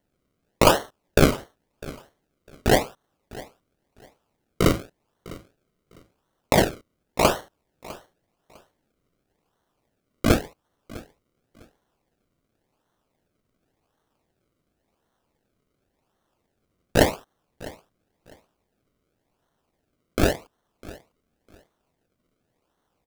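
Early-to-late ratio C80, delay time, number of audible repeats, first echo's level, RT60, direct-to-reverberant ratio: no reverb, 653 ms, 2, -20.0 dB, no reverb, no reverb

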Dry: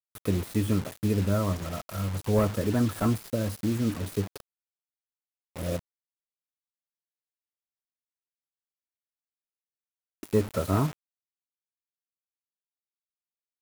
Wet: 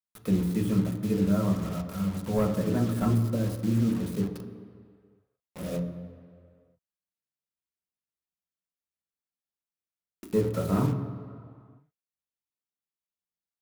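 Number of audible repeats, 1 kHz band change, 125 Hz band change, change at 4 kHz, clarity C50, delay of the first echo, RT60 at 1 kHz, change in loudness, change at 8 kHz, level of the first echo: no echo, -2.0 dB, +0.5 dB, -4.0 dB, 8.5 dB, no echo, 2.2 s, +0.5 dB, -4.5 dB, no echo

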